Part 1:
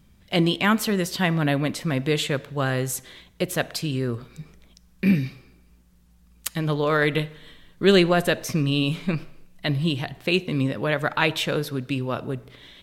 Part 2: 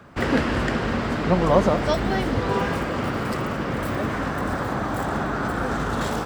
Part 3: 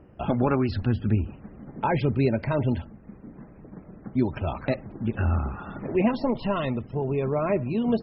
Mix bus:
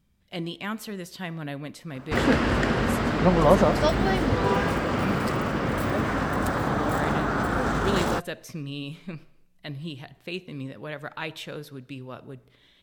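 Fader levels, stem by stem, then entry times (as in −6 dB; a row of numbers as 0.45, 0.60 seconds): −12.0 dB, 0.0 dB, muted; 0.00 s, 1.95 s, muted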